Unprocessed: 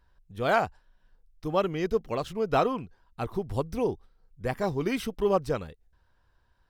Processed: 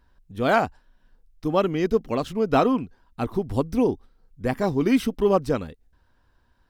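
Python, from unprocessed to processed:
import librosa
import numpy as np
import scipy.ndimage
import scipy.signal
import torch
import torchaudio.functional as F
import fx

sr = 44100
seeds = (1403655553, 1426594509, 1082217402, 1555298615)

y = fx.peak_eq(x, sr, hz=260.0, db=8.5, octaves=0.58)
y = F.gain(torch.from_numpy(y), 3.5).numpy()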